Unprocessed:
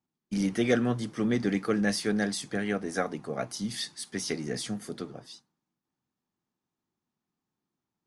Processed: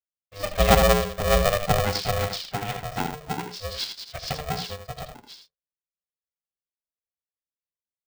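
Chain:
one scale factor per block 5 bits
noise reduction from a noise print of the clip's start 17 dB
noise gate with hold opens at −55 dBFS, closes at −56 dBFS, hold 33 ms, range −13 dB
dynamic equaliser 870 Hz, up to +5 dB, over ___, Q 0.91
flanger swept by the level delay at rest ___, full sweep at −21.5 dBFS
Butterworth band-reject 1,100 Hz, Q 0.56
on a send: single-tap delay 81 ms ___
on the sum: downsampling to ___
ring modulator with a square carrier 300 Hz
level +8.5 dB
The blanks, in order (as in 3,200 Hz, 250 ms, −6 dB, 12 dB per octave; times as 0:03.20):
−42 dBFS, 8.6 ms, −7 dB, 11,025 Hz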